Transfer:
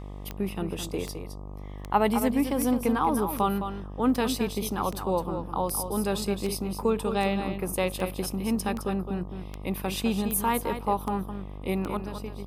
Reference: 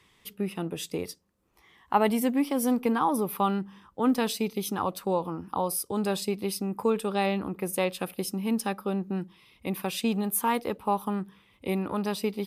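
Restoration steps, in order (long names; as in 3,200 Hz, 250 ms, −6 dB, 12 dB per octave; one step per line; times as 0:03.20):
click removal
hum removal 49.5 Hz, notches 25
echo removal 212 ms −8.5 dB
level 0 dB, from 0:11.97 +10.5 dB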